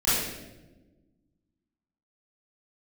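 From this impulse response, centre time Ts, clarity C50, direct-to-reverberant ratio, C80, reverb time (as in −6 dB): 89 ms, −2.5 dB, −14.0 dB, 2.0 dB, 1.2 s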